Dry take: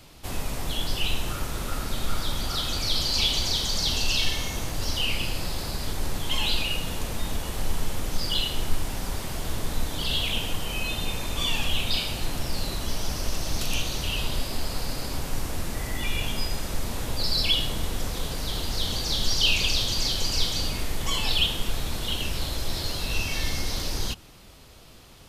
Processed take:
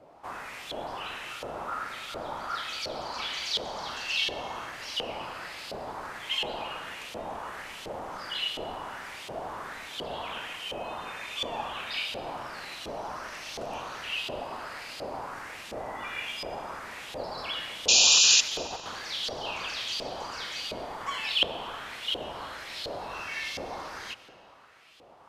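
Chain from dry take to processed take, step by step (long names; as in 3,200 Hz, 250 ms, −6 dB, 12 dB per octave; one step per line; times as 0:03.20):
parametric band 3,500 Hz −7 dB 1.4 octaves
0:18.14–0:18.88: compressor whose output falls as the input rises −28 dBFS, ratio −0.5
auto-filter band-pass saw up 1.4 Hz 520–3,400 Hz
0:17.88–0:18.41: sound drawn into the spectrogram noise 2,400–7,300 Hz −27 dBFS
convolution reverb RT60 2.6 s, pre-delay 60 ms, DRR 15 dB
level +8 dB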